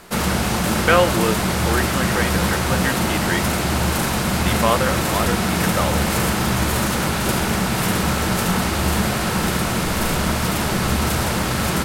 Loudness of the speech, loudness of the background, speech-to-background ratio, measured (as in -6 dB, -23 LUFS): -24.0 LUFS, -20.0 LUFS, -4.0 dB